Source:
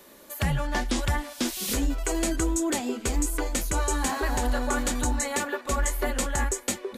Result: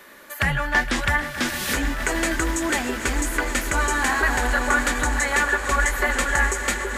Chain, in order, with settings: peaking EQ 1.7 kHz +13.5 dB 1.4 oct; echo with a slow build-up 155 ms, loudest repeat 5, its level -16 dB

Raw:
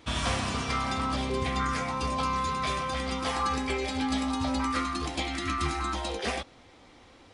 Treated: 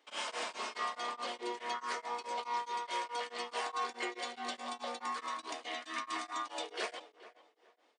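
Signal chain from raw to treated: gate -51 dBFS, range -9 dB; high-pass 410 Hz 24 dB/octave; on a send: tape echo 389 ms, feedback 30%, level -15 dB, low-pass 2 kHz; on the sum: speed mistake 48 kHz file played as 44.1 kHz; tremolo of two beating tones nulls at 4.7 Hz; trim -4.5 dB

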